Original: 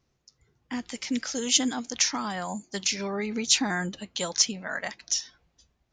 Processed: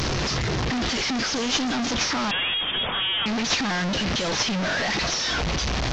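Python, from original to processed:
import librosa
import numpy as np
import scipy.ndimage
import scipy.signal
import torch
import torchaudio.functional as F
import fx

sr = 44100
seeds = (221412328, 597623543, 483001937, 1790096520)

y = fx.delta_mod(x, sr, bps=32000, step_db=-18.5)
y = fx.freq_invert(y, sr, carrier_hz=3500, at=(2.31, 3.26))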